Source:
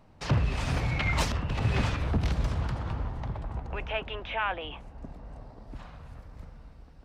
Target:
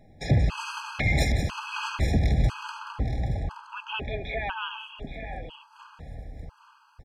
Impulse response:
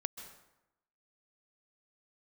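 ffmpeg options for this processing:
-af "aecho=1:1:180|250|821|872:0.355|0.119|0.266|0.251,afftfilt=real='re*gt(sin(2*PI*1*pts/sr)*(1-2*mod(floor(b*sr/1024/830),2)),0)':imag='im*gt(sin(2*PI*1*pts/sr)*(1-2*mod(floor(b*sr/1024/830),2)),0)':win_size=1024:overlap=0.75,volume=4dB"

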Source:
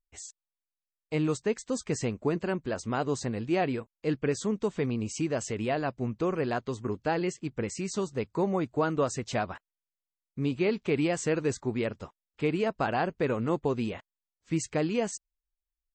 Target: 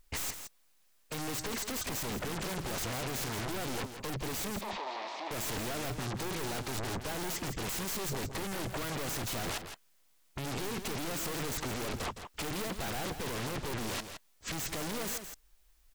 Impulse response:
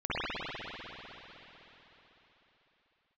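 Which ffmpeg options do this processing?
-filter_complex "[0:a]aeval=exprs='(tanh(141*val(0)+0.45)-tanh(0.45))/141':channel_layout=same,aeval=exprs='0.0106*sin(PI/2*5.01*val(0)/0.0106)':channel_layout=same,asettb=1/sr,asplit=3[link_01][link_02][link_03];[link_01]atrim=end=4.614[link_04];[link_02]atrim=start=4.61:end=5.31,asetpts=PTS-STARTPTS,afade=type=in:duration=0.004:curve=qsin,afade=type=out:start_time=0.696:duration=0.004:curve=qsin,highpass=frequency=380:width=0.5412,highpass=frequency=380:width=1.3066,equalizer=frequency=450:width_type=q:width=4:gain=-8,equalizer=frequency=660:width_type=q:width=4:gain=6,equalizer=frequency=940:width_type=q:width=4:gain=9,equalizer=frequency=1500:width_type=q:width=4:gain=-9,equalizer=frequency=3000:width_type=q:width=4:gain=-5,lowpass=frequency=4200:width=0.5412,lowpass=frequency=4200:width=1.3066[link_05];[link_03]atrim=start=5.306[link_06];[link_04][link_05]acrossfade=duration=0.004:curve1=hsin:curve2=qsin[link_07];[link_07][link_06]acrossfade=duration=0.004:curve1=qsin:curve2=hsin,asplit=2[link_08][link_09];[link_09]aecho=0:1:165:0.355[link_10];[link_08][link_10]amix=inputs=2:normalize=0,volume=7dB"

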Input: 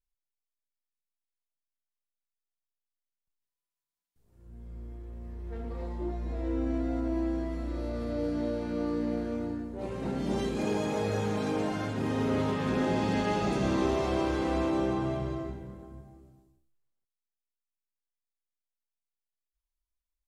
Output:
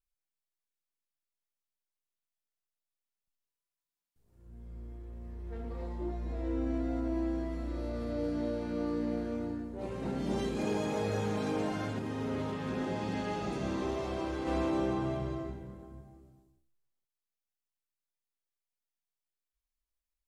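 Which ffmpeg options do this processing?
ffmpeg -i in.wav -filter_complex "[0:a]asplit=3[link_01][link_02][link_03];[link_01]afade=type=out:start_time=11.98:duration=0.02[link_04];[link_02]flanger=delay=9.4:depth=3.7:regen=-68:speed=1:shape=triangular,afade=type=in:start_time=11.98:duration=0.02,afade=type=out:start_time=14.46:duration=0.02[link_05];[link_03]afade=type=in:start_time=14.46:duration=0.02[link_06];[link_04][link_05][link_06]amix=inputs=3:normalize=0,volume=-2.5dB" out.wav

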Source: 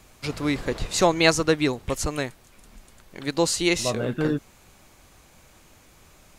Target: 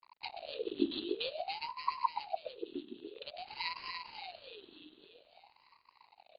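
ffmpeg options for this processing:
ffmpeg -i in.wav -af "aeval=exprs='(tanh(3.16*val(0)+0.4)-tanh(0.4))/3.16':channel_layout=same,acompressor=threshold=-34dB:ratio=2.5,afftfilt=real='re*(1-between(b*sr/4096,100,2900))':imag='im*(1-between(b*sr/4096,100,2900))':win_size=4096:overlap=0.75,aresample=8000,aeval=exprs='sgn(val(0))*max(abs(val(0))-0.00168,0)':channel_layout=same,aresample=44100,aecho=1:1:291|582|873|1164|1455|1746|2037|2328:0.531|0.308|0.179|0.104|0.0601|0.0348|0.0202|0.0117,aeval=exprs='val(0)*sin(2*PI*670*n/s+670*0.55/0.51*sin(2*PI*0.51*n/s))':channel_layout=same,volume=9.5dB" out.wav

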